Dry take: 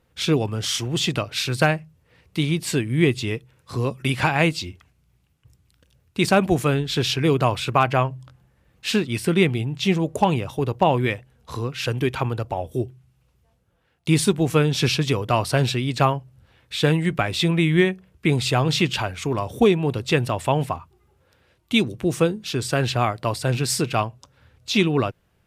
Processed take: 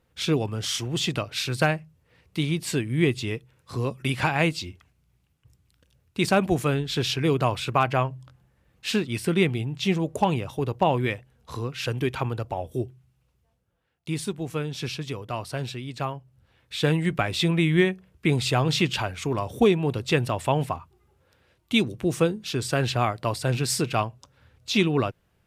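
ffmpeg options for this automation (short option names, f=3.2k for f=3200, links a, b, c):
-af "volume=5dB,afade=t=out:st=12.83:d=1.31:silence=0.421697,afade=t=in:st=16.09:d=0.96:silence=0.375837"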